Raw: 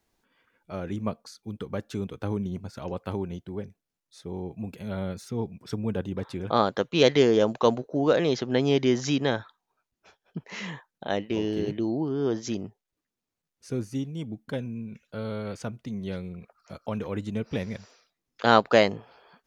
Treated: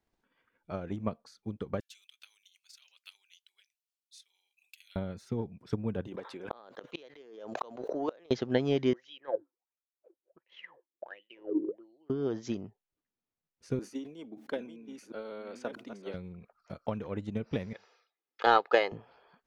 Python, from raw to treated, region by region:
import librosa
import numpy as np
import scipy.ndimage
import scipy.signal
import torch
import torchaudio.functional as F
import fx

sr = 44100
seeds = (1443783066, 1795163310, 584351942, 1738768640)

y = fx.chain(x, sr, fx.cheby1_highpass(hz=2700.0, order=3),
    fx.high_shelf(hz=4900.0, db=10.5), at=(1.8, 4.96))
y = fx.chain(y, sr, fx.highpass(hz=380.0, slope=12),
    fx.gate_flip(shuts_db=-17.0, range_db=-26),
    fx.pre_swell(db_per_s=45.0), at=(6.07, 8.31))
y = fx.chain(y, sr, fx.small_body(hz=(360.0, 510.0), ring_ms=45, db=16),
    fx.wah_lfo(hz=1.4, low_hz=280.0, high_hz=3400.0, q=13.0), at=(8.93, 12.1))
y = fx.chain(y, sr, fx.reverse_delay(ms=666, wet_db=-6.5),
    fx.highpass(hz=280.0, slope=24),
    fx.sustainer(db_per_s=100.0), at=(13.79, 16.14))
y = fx.chain(y, sr, fx.bandpass_edges(low_hz=470.0, high_hz=4900.0),
    fx.comb(ms=2.4, depth=0.46), at=(17.73, 18.92))
y = fx.high_shelf(y, sr, hz=5400.0, db=-11.0)
y = fx.transient(y, sr, attack_db=8, sustain_db=2)
y = y * librosa.db_to_amplitude(-7.5)